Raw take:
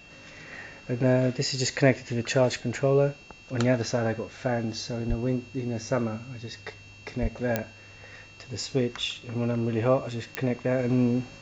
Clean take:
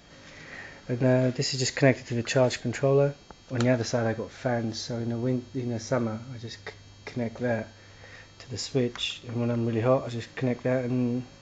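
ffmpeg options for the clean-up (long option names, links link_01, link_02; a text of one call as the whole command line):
ffmpeg -i in.wav -filter_complex "[0:a]adeclick=threshold=4,bandreject=frequency=2700:width=30,asplit=3[link_01][link_02][link_03];[link_01]afade=type=out:start_time=5.08:duration=0.02[link_04];[link_02]highpass=frequency=140:width=0.5412,highpass=frequency=140:width=1.3066,afade=type=in:start_time=5.08:duration=0.02,afade=type=out:start_time=5.2:duration=0.02[link_05];[link_03]afade=type=in:start_time=5.2:duration=0.02[link_06];[link_04][link_05][link_06]amix=inputs=3:normalize=0,asplit=3[link_07][link_08][link_09];[link_07]afade=type=out:start_time=7.21:duration=0.02[link_10];[link_08]highpass=frequency=140:width=0.5412,highpass=frequency=140:width=1.3066,afade=type=in:start_time=7.21:duration=0.02,afade=type=out:start_time=7.33:duration=0.02[link_11];[link_09]afade=type=in:start_time=7.33:duration=0.02[link_12];[link_10][link_11][link_12]amix=inputs=3:normalize=0,asetnsamples=nb_out_samples=441:pad=0,asendcmd='10.79 volume volume -3.5dB',volume=0dB" out.wav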